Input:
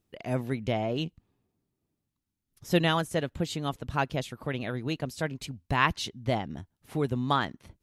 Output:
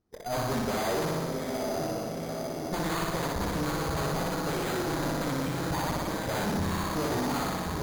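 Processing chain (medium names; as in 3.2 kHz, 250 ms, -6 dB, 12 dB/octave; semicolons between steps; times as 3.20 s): block-companded coder 3-bit; tilt shelf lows -3.5 dB; reverse; compression 6:1, threshold -33 dBFS, peak gain reduction 15.5 dB; reverse; spectral noise reduction 17 dB; echo that smears into a reverb 905 ms, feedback 65%, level -12 dB; sine folder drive 18 dB, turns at -21 dBFS; low-pass 1.3 kHz 12 dB/octave; on a send: flutter echo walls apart 10.3 m, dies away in 1.4 s; on the sum: careless resampling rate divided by 8×, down filtered, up hold; valve stage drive 26 dB, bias 0.6; de-hum 54.59 Hz, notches 32; trim +1 dB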